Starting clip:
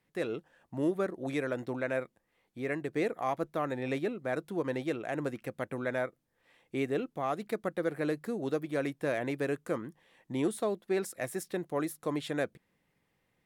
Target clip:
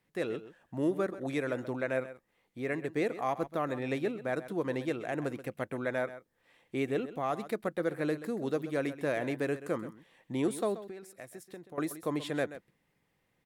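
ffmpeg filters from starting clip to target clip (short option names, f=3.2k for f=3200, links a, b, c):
-filter_complex "[0:a]asettb=1/sr,asplit=3[a][b][c];[a]atrim=end=10.834[d];[b]atrim=start=10.83:end=11.78,asetpts=PTS-STARTPTS,afade=t=in:d=0.004:c=qsin,afade=t=out:st=0.946:d=0.004:c=qsin,acompressor=threshold=-45dB:ratio=5[e];[c]atrim=start=11.776[f];[d][e]acrossfade=d=0.004:c1=hsin:c2=qsin[g];[g][f]acrossfade=d=0.004:c1=qsin:c2=hsin,asplit=2[h][i];[i]aecho=0:1:131:0.2[j];[h][j]amix=inputs=2:normalize=0"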